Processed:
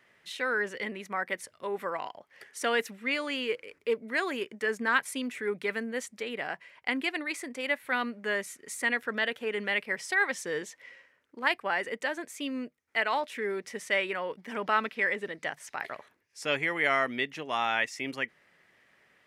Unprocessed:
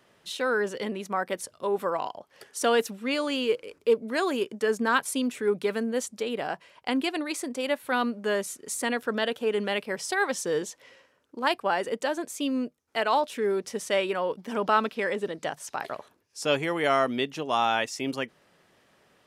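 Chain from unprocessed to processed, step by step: peaking EQ 2 kHz +13.5 dB 0.75 oct; trim -7 dB

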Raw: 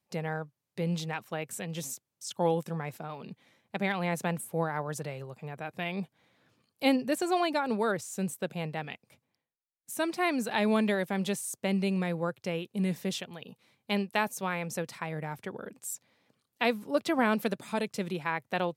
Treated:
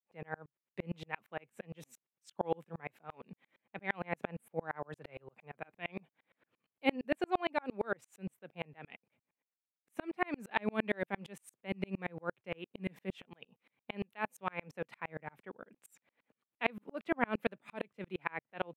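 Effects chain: high-pass 190 Hz 12 dB/octave; resonant high shelf 3.6 kHz -12.5 dB, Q 1.5; sawtooth tremolo in dB swelling 8.7 Hz, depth 38 dB; trim +1 dB

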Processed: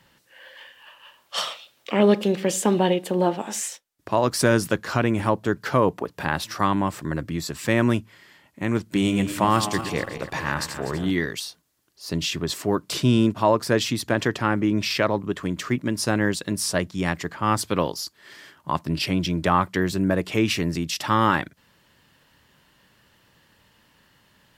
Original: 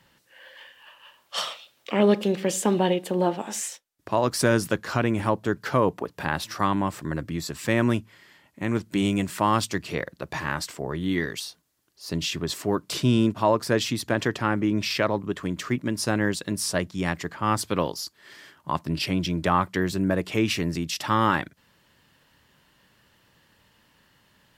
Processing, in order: 8.83–11.11 s: backward echo that repeats 123 ms, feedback 62%, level -9 dB; trim +2 dB

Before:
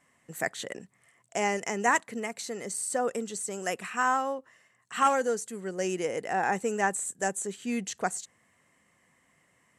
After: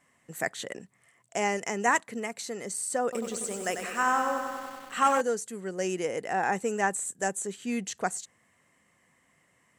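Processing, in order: 3.03–5.21 s: bit-crushed delay 95 ms, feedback 80%, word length 8-bit, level -7 dB

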